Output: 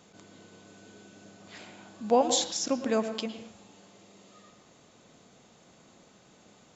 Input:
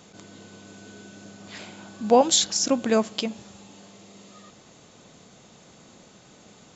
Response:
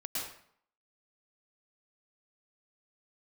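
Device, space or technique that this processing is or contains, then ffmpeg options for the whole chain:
filtered reverb send: -filter_complex "[0:a]asplit=2[link_01][link_02];[link_02]highpass=190,lowpass=3300[link_03];[1:a]atrim=start_sample=2205[link_04];[link_03][link_04]afir=irnorm=-1:irlink=0,volume=-9dB[link_05];[link_01][link_05]amix=inputs=2:normalize=0,volume=-7.5dB"

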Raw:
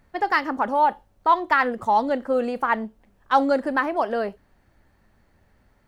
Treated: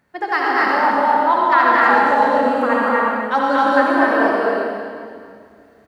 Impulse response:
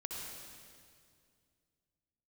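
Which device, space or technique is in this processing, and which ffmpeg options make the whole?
stadium PA: -filter_complex "[0:a]highpass=140,equalizer=frequency=1600:width_type=o:width=0.55:gain=4,aecho=1:1:230.3|262.4:0.794|0.891[link_01];[1:a]atrim=start_sample=2205[link_02];[link_01][link_02]afir=irnorm=-1:irlink=0,volume=3dB"

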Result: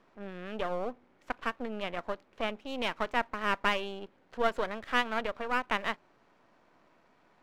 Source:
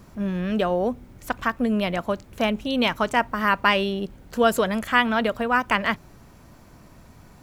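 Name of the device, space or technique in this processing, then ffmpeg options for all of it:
crystal radio: -af "highpass=370,lowpass=2900,aeval=exprs='if(lt(val(0),0),0.251*val(0),val(0))':channel_layout=same,volume=-6dB"

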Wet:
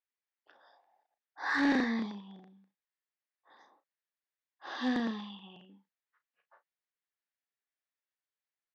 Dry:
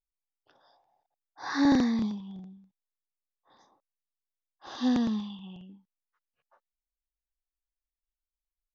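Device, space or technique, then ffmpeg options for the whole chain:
intercom: -filter_complex "[0:a]highpass=320,lowpass=4100,equalizer=frequency=1800:width_type=o:width=0.59:gain=8,asoftclip=type=tanh:threshold=-22dB,asplit=2[link_01][link_02];[link_02]adelay=35,volume=-11dB[link_03];[link_01][link_03]amix=inputs=2:normalize=0"

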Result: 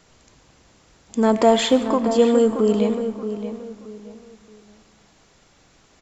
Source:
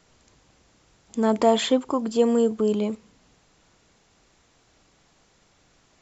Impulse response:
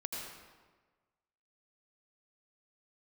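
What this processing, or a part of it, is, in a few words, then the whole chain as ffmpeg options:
saturated reverb return: -filter_complex "[0:a]asplit=2[link_01][link_02];[1:a]atrim=start_sample=2205[link_03];[link_02][link_03]afir=irnorm=-1:irlink=0,asoftclip=type=tanh:threshold=-21.5dB,volume=-7dB[link_04];[link_01][link_04]amix=inputs=2:normalize=0,asplit=2[link_05][link_06];[link_06]adelay=626,lowpass=frequency=2400:poles=1,volume=-9.5dB,asplit=2[link_07][link_08];[link_08]adelay=626,lowpass=frequency=2400:poles=1,volume=0.3,asplit=2[link_09][link_10];[link_10]adelay=626,lowpass=frequency=2400:poles=1,volume=0.3[link_11];[link_05][link_07][link_09][link_11]amix=inputs=4:normalize=0,volume=2.5dB"

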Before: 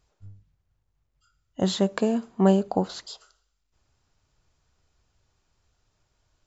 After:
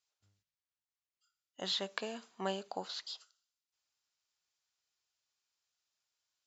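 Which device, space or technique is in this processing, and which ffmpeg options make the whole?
piezo pickup straight into a mixer: -filter_complex "[0:a]acrossover=split=4700[link_01][link_02];[link_02]acompressor=threshold=-59dB:ratio=4:attack=1:release=60[link_03];[link_01][link_03]amix=inputs=2:normalize=0,agate=range=-9dB:threshold=-52dB:ratio=16:detection=peak,lowpass=5300,aderivative,volume=7dB"

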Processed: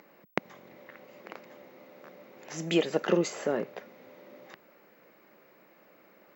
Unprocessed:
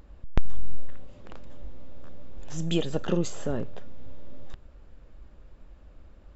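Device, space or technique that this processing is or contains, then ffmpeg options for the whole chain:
old television with a line whistle: -af "highpass=frequency=220:width=0.5412,highpass=frequency=220:width=1.3066,equalizer=frequency=260:width_type=q:width=4:gain=-8,equalizer=frequency=2100:width_type=q:width=4:gain=9,equalizer=frequency=3400:width_type=q:width=4:gain=-7,lowpass=frequency=6600:width=0.5412,lowpass=frequency=6600:width=1.3066,aeval=exprs='val(0)+0.000355*sin(2*PI*15734*n/s)':channel_layout=same,volume=4dB"

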